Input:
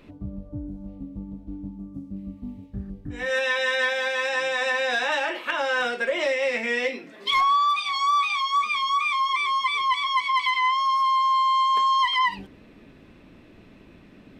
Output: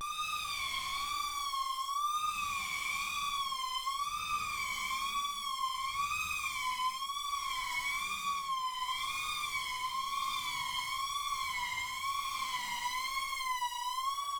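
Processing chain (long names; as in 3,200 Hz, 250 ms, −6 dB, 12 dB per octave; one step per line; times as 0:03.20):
gain into a clipping stage and back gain 32.5 dB
extreme stretch with random phases 4.6×, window 0.25 s, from 0:07.69
pitch vibrato 1 Hz 96 cents
on a send: single-tap delay 587 ms −23 dB
on the sum: level −3 dB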